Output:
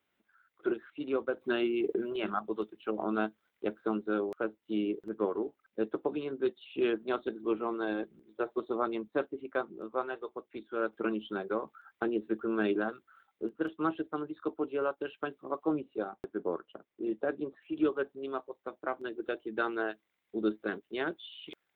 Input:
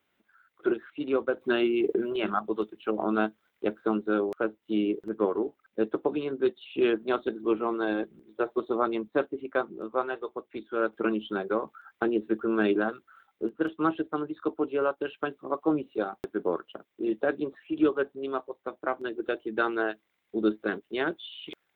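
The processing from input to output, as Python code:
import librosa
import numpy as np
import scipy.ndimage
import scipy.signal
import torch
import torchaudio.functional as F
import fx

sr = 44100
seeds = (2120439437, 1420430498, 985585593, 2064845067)

y = fx.high_shelf(x, sr, hz=2500.0, db=-8.5, at=(15.8, 17.62))
y = y * 10.0 ** (-5.0 / 20.0)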